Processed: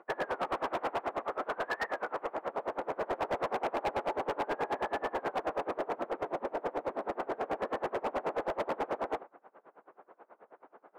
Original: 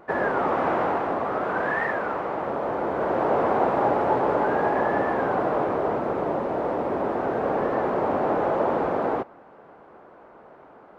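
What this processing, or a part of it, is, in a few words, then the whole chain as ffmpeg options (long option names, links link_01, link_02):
helicopter radio: -af "highpass=340,lowpass=2500,aeval=exprs='val(0)*pow(10,-27*(0.5-0.5*cos(2*PI*9.3*n/s))/20)':channel_layout=same,asoftclip=type=hard:threshold=-26dB,volume=-1.5dB"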